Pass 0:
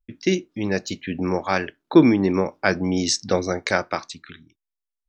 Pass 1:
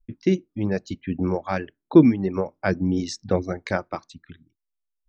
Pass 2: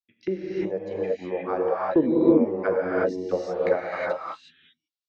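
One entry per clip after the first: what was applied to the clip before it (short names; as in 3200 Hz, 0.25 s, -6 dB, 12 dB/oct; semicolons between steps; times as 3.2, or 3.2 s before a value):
reverb removal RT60 1.3 s; tilt -3 dB/oct; gain -4.5 dB
auto-wah 510–4100 Hz, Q 2.3, down, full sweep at -19 dBFS; non-linear reverb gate 0.39 s rising, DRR -5.5 dB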